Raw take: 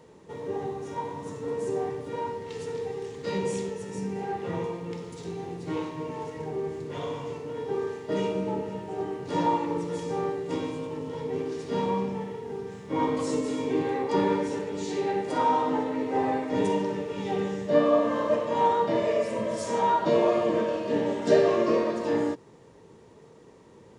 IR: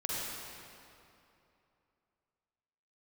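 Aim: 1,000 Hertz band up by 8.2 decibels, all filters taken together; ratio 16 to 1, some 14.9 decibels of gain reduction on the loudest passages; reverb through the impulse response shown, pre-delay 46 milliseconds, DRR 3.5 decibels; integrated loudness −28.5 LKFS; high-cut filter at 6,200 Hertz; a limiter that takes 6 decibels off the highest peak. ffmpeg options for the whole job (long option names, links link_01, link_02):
-filter_complex "[0:a]lowpass=6200,equalizer=frequency=1000:width_type=o:gain=9,acompressor=threshold=-27dB:ratio=16,alimiter=limit=-24dB:level=0:latency=1,asplit=2[link_01][link_02];[1:a]atrim=start_sample=2205,adelay=46[link_03];[link_02][link_03]afir=irnorm=-1:irlink=0,volume=-9dB[link_04];[link_01][link_04]amix=inputs=2:normalize=0,volume=3dB"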